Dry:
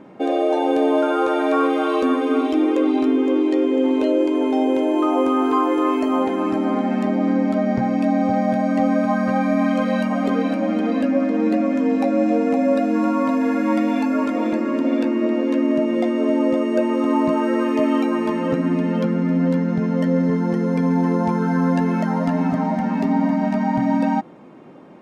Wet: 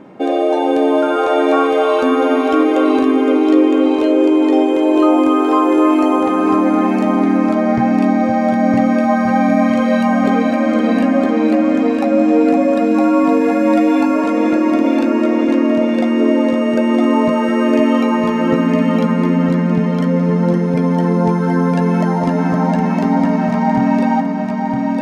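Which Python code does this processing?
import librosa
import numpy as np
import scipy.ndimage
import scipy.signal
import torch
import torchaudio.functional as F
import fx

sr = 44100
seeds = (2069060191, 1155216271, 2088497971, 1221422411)

y = fx.echo_feedback(x, sr, ms=961, feedback_pct=29, wet_db=-3.0)
y = y * 10.0 ** (4.0 / 20.0)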